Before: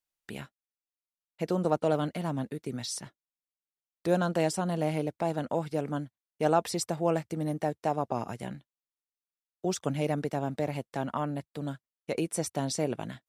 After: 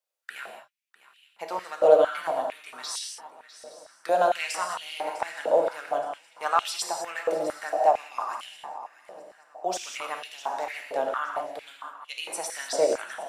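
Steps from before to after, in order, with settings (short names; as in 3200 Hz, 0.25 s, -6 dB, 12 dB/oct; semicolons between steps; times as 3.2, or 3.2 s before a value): swung echo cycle 0.87 s, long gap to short 3:1, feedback 34%, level -16 dB; non-linear reverb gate 0.23 s flat, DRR 1.5 dB; stepped high-pass 4.4 Hz 540–3000 Hz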